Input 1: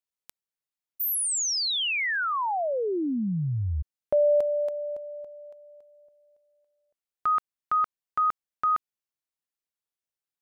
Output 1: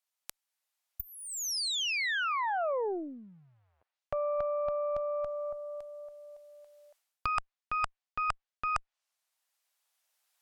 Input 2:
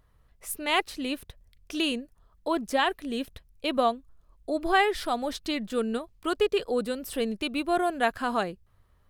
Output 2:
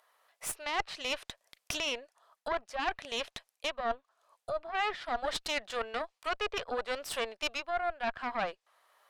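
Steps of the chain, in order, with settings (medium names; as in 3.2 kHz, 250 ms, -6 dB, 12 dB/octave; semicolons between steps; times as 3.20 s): recorder AGC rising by 5.8 dB/s; low-pass that closes with the level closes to 2.2 kHz, closed at -23 dBFS; Chebyshev high-pass 650 Hz, order 3; reverse; compression 12:1, threshold -36 dBFS; reverse; Chebyshev shaper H 4 -19 dB, 5 -39 dB, 6 -12 dB, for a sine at -21.5 dBFS; trim +5 dB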